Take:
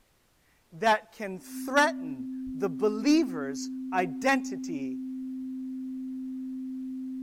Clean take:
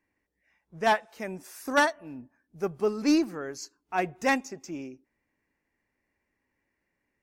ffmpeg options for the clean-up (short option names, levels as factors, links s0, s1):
-filter_complex "[0:a]bandreject=f=260:w=30,asplit=3[s0][s1][s2];[s0]afade=t=out:st=2.45:d=0.02[s3];[s1]highpass=f=140:w=0.5412,highpass=f=140:w=1.3066,afade=t=in:st=2.45:d=0.02,afade=t=out:st=2.57:d=0.02[s4];[s2]afade=t=in:st=2.57:d=0.02[s5];[s3][s4][s5]amix=inputs=3:normalize=0,agate=range=0.0891:threshold=0.00282"